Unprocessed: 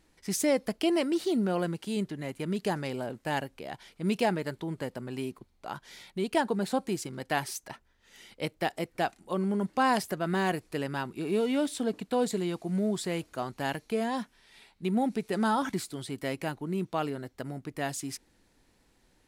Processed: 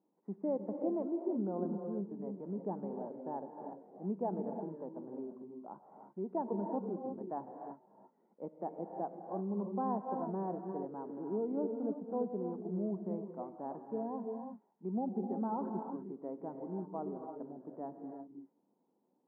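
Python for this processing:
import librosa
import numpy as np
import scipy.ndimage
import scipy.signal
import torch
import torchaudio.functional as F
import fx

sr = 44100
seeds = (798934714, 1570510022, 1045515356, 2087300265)

y = scipy.signal.sosfilt(scipy.signal.ellip(3, 1.0, 60, [190.0, 950.0], 'bandpass', fs=sr, output='sos'), x)
y = fx.air_absorb(y, sr, metres=360.0)
y = fx.rev_gated(y, sr, seeds[0], gate_ms=370, shape='rising', drr_db=4.5)
y = y * 10.0 ** (-7.5 / 20.0)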